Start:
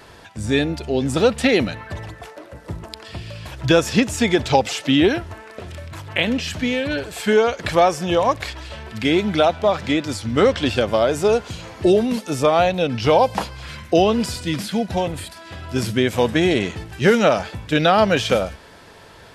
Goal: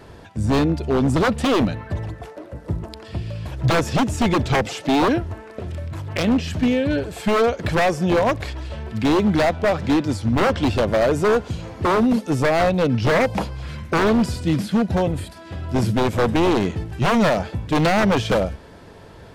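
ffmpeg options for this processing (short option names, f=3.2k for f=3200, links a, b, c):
-af "tiltshelf=f=740:g=6,aeval=exprs='0.251*(abs(mod(val(0)/0.251+3,4)-2)-1)':c=same"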